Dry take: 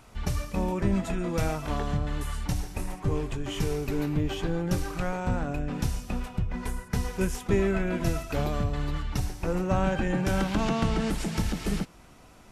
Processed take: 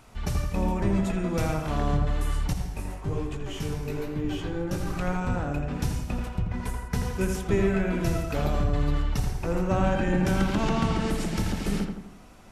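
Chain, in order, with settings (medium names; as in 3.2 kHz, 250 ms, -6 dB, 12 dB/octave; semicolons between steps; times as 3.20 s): filtered feedback delay 83 ms, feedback 52%, low-pass 2 kHz, level -4 dB; 2.53–4.87 s: chorus 1.2 Hz, delay 15.5 ms, depth 5.9 ms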